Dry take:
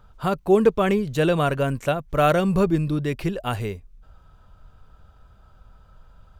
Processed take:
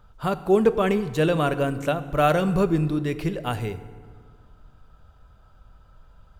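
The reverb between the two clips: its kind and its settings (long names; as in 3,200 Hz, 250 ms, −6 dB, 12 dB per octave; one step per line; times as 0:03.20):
feedback delay network reverb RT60 1.8 s, low-frequency decay 1.25×, high-frequency decay 0.65×, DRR 11.5 dB
level −1.5 dB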